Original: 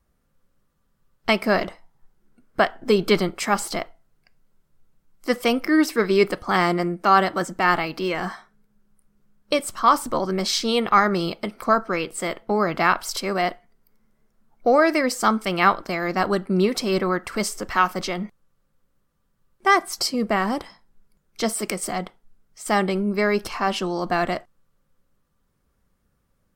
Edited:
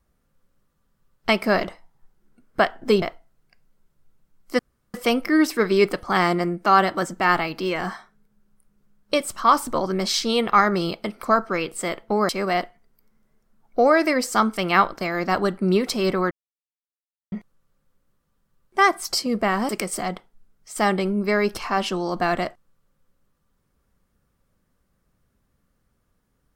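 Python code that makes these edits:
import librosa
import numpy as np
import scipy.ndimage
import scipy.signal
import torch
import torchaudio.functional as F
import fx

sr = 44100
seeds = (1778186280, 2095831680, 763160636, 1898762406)

y = fx.edit(x, sr, fx.cut(start_s=3.02, length_s=0.74),
    fx.insert_room_tone(at_s=5.33, length_s=0.35),
    fx.cut(start_s=12.68, length_s=0.49),
    fx.silence(start_s=17.19, length_s=1.01),
    fx.cut(start_s=20.57, length_s=1.02), tone=tone)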